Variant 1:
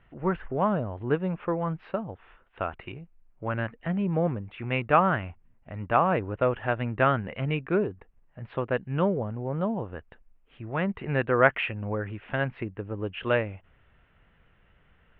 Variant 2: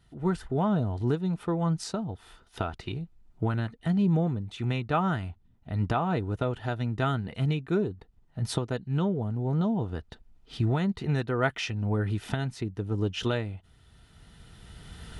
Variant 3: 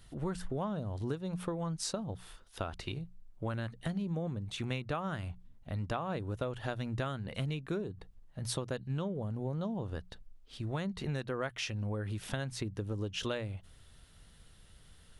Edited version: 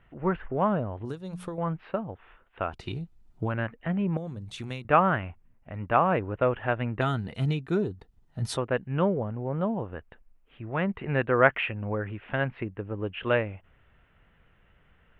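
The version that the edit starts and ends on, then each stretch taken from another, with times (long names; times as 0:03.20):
1
0:01.05–0:01.58: punch in from 3
0:02.75–0:03.47: punch in from 2, crossfade 0.16 s
0:04.17–0:04.85: punch in from 3
0:07.01–0:08.57: punch in from 2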